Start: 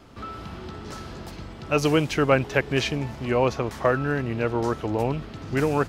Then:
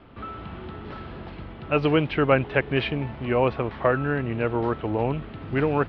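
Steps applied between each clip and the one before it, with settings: inverse Chebyshev low-pass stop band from 6.4 kHz, stop band 40 dB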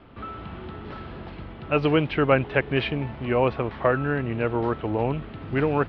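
no audible change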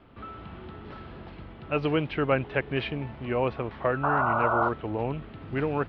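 painted sound noise, 4.03–4.69 s, 560–1500 Hz -20 dBFS; trim -5 dB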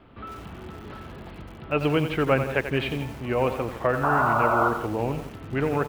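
delay 163 ms -15 dB; bit-crushed delay 89 ms, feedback 35%, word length 7-bit, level -9 dB; trim +2.5 dB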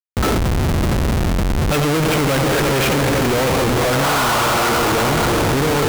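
echo that smears into a reverb 486 ms, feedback 46%, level -8.5 dB; Schmitt trigger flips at -36.5 dBFS; trim +9 dB

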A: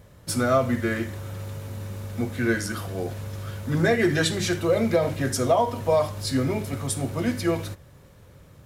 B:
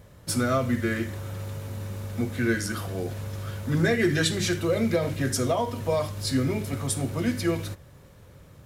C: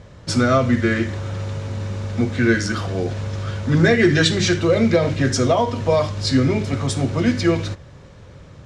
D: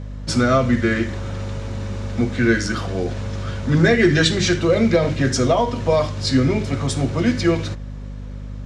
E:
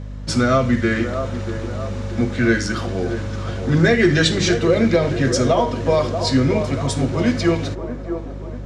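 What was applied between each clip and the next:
dynamic bell 770 Hz, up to -7 dB, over -36 dBFS, Q 1.1
low-pass 6.7 kHz 24 dB/octave; trim +8 dB
hum 50 Hz, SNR 12 dB
feedback echo behind a band-pass 636 ms, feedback 49%, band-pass 590 Hz, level -7 dB

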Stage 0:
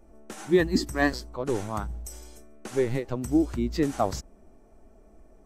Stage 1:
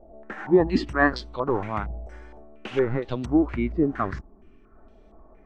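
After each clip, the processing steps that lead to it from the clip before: time-frequency box 3.73–4.75 s, 440–1000 Hz -10 dB; step-sequenced low-pass 4.3 Hz 670–3600 Hz; trim +1.5 dB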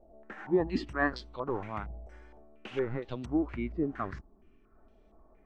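peaking EQ 2.7 kHz +2 dB; trim -9 dB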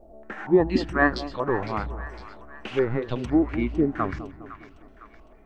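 two-band feedback delay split 1 kHz, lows 204 ms, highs 507 ms, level -13 dB; trim +8.5 dB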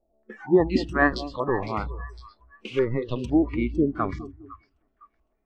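spectral noise reduction 22 dB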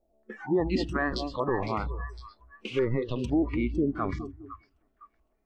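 peak limiter -17.5 dBFS, peak gain reduction 11 dB

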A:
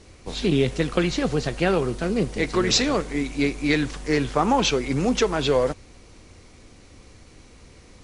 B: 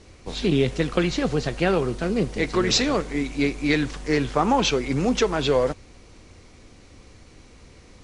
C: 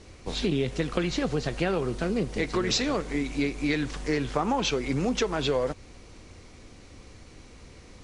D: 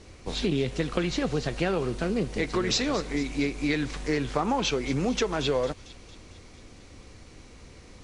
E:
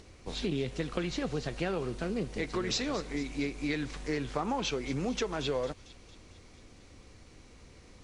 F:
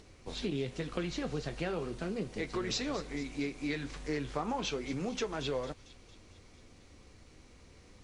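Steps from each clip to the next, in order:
Bessel low-pass 8.8 kHz
compression 2.5:1, threshold -25 dBFS, peak gain reduction 7 dB
feedback echo behind a high-pass 226 ms, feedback 61%, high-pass 3.1 kHz, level -13 dB
upward compressor, threshold -45 dBFS; trim -6 dB
flange 0.35 Hz, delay 6.6 ms, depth 7.6 ms, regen -65%; trim +1.5 dB

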